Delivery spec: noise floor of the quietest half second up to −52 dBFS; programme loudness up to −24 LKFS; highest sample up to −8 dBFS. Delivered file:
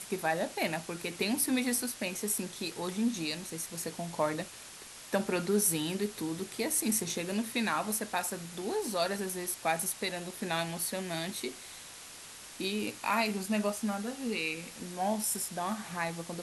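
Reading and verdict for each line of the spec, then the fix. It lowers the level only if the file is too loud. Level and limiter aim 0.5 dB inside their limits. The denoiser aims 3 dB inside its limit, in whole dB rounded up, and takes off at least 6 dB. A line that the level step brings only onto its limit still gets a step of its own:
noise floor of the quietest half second −49 dBFS: out of spec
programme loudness −33.0 LKFS: in spec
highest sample −15.0 dBFS: in spec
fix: broadband denoise 6 dB, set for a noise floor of −49 dBFS

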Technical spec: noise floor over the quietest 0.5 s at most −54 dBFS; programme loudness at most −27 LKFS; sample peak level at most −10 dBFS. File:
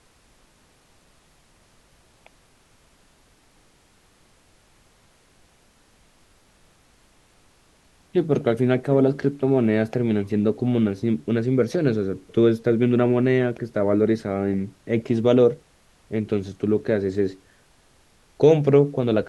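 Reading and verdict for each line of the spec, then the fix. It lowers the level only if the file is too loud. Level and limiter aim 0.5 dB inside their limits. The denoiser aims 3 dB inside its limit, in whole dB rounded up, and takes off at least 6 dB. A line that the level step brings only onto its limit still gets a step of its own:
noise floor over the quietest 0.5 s −58 dBFS: in spec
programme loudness −21.5 LKFS: out of spec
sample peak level −4.5 dBFS: out of spec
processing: level −6 dB

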